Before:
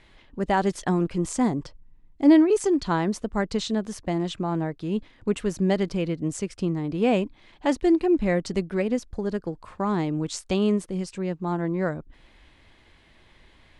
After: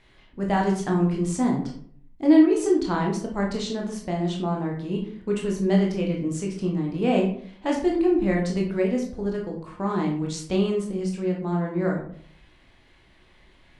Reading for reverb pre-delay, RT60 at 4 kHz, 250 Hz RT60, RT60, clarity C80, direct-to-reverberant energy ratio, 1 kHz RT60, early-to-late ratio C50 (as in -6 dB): 16 ms, 0.35 s, 0.75 s, 0.60 s, 10.0 dB, -1.0 dB, 0.50 s, 6.0 dB